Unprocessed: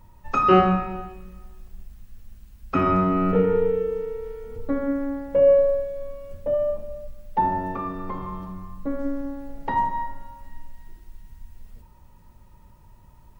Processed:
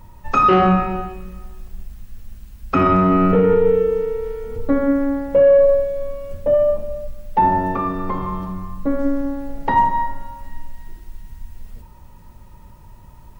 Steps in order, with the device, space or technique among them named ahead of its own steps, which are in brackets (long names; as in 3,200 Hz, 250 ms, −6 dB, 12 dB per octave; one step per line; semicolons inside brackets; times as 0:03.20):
soft clipper into limiter (soft clipping −8.5 dBFS, distortion −22 dB; brickwall limiter −15 dBFS, peak gain reduction 6 dB)
level +8 dB